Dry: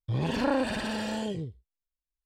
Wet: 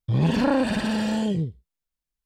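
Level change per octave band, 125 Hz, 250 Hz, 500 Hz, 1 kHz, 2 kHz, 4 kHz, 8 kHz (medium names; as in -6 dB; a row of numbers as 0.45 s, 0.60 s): +8.5 dB, +8.5 dB, +4.0 dB, +3.5 dB, +3.5 dB, +3.5 dB, +3.5 dB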